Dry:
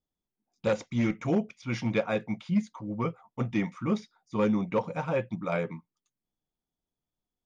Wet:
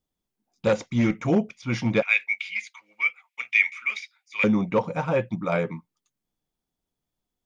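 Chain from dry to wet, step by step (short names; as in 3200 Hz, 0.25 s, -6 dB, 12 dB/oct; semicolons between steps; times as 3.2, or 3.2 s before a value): 2.02–4.44 resonant high-pass 2300 Hz, resonance Q 9.3; gain +5 dB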